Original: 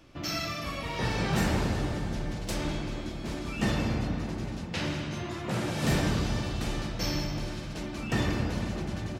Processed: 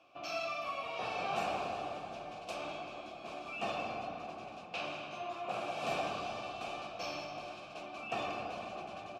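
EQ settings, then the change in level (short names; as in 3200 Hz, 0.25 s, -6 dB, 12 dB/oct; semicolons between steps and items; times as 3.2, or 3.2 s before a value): vowel filter a; high shelf 3000 Hz +9.5 dB; +5.5 dB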